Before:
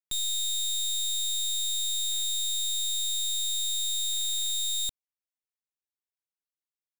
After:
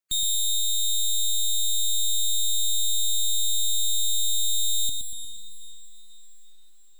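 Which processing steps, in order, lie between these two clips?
spectral gate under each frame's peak -30 dB strong; diffused feedback echo 0.489 s, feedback 46%, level -15 dB; lo-fi delay 0.118 s, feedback 55%, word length 11-bit, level -6.5 dB; gain +5 dB

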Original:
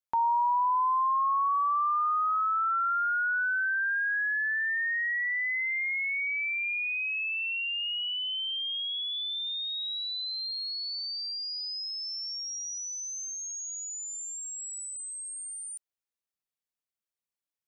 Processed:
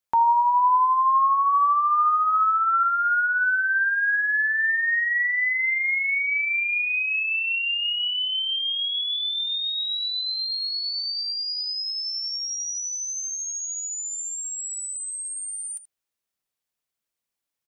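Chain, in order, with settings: 2.83–4.48 HPF 910 Hz 12 dB/oct; on a send: early reflections 14 ms -18 dB, 79 ms -14.5 dB; on the sum: gain +6.5 dB

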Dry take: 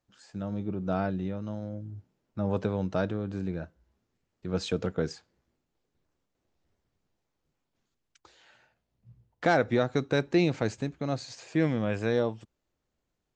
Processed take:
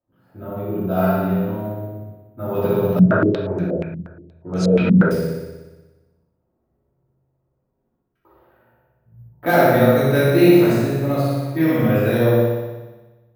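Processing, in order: HPF 49 Hz; notches 50/100/150/200/250/300 Hz; low-pass opened by the level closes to 810 Hz, open at -23 dBFS; flutter echo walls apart 10.3 m, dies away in 1.2 s; shoebox room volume 170 m³, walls mixed, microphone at 2.8 m; careless resampling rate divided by 3×, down none, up hold; 2.99–5.11 stepped low-pass 8.4 Hz 200–6500 Hz; gain -2.5 dB

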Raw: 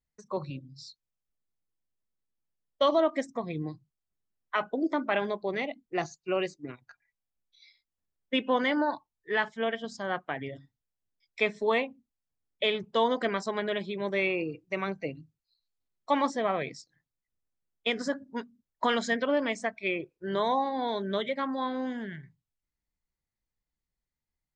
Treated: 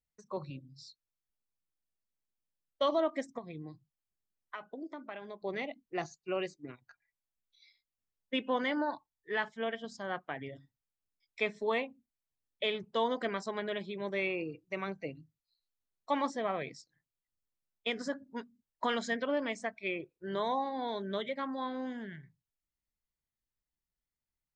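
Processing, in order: 3.38–5.42 compressor 6:1, threshold -35 dBFS, peak gain reduction 12.5 dB; gain -5.5 dB

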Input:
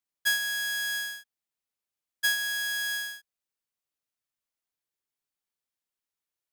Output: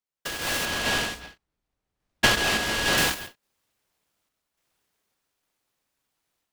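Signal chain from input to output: 0.65–2.98 RIAA curve playback; compressor 6:1, threshold -30 dBFS, peak gain reduction 8 dB; random-step tremolo; AGC gain up to 15 dB; reverb, pre-delay 0.12 s, DRR 2.5 dB; noise-modulated delay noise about 1200 Hz, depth 0.11 ms

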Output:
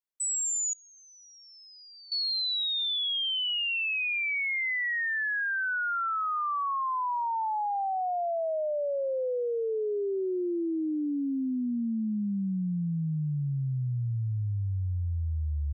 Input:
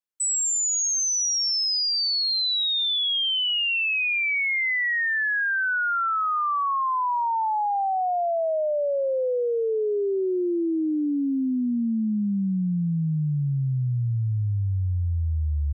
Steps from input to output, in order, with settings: 0.73–2.12 vowel filter i; gain -5.5 dB

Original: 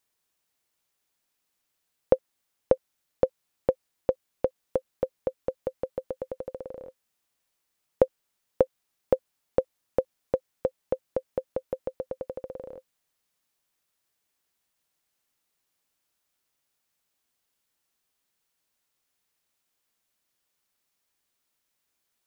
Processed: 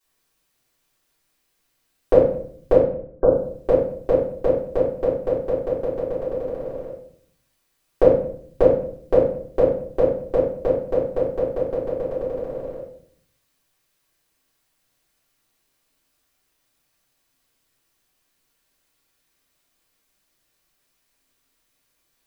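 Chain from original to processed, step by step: 2.72–3.25 brick-wall FIR low-pass 1600 Hz; reverb RT60 0.60 s, pre-delay 3 ms, DRR -13 dB; gain -4 dB

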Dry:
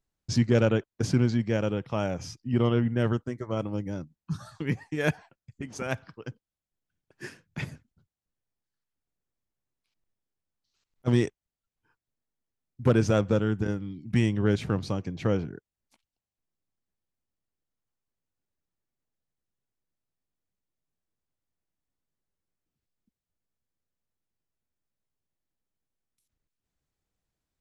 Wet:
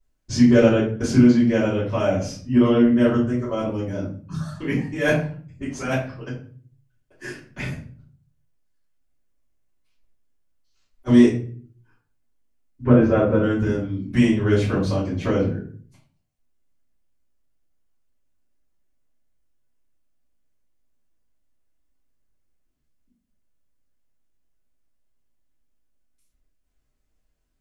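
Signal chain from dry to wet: 12.83–13.43 LPF 1800 Hz 12 dB/oct; reverb RT60 0.45 s, pre-delay 3 ms, DRR -13 dB; gain -6.5 dB

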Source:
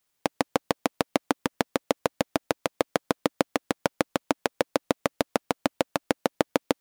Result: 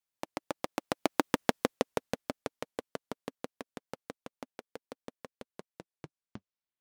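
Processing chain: tape stop at the end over 1.67 s; Doppler pass-by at 1.39, 32 m/s, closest 9 m

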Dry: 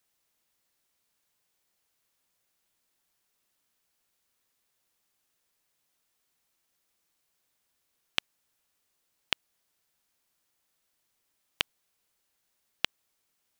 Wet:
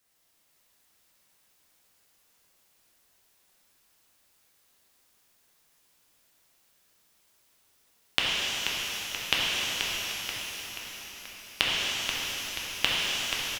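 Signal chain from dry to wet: frequency-shifting echo 0.482 s, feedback 56%, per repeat -76 Hz, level -7 dB; shimmer reverb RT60 3.7 s, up +12 st, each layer -8 dB, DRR -6 dB; gain +2.5 dB

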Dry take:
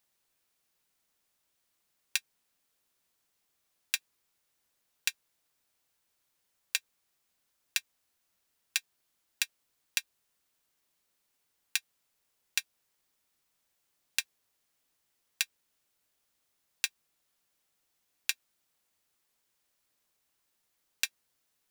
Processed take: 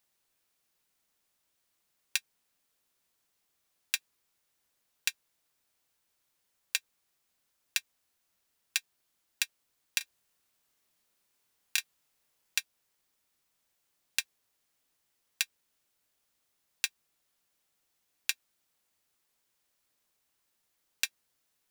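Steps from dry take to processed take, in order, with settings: 9.98–12.59 doubler 27 ms -3.5 dB

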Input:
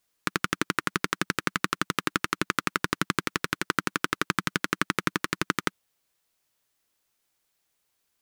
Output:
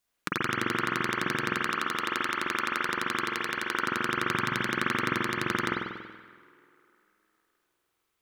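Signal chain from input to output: 1.54–3.85 bell 100 Hz -13 dB 2.4 oct; tape echo 0.153 s, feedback 77%, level -19.5 dB, low-pass 4800 Hz; spring tank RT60 1.2 s, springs 47 ms, chirp 50 ms, DRR -5 dB; gain -5.5 dB

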